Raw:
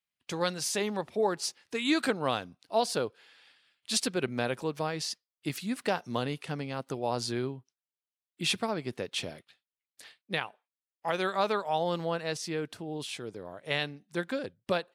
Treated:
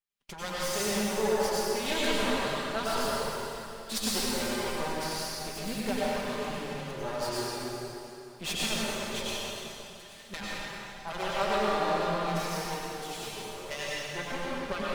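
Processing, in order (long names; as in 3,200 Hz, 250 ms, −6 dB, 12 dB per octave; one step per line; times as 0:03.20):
lower of the sound and its delayed copy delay 5 ms
dense smooth reverb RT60 3 s, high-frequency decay 0.9×, pre-delay 80 ms, DRR −7 dB
level −4 dB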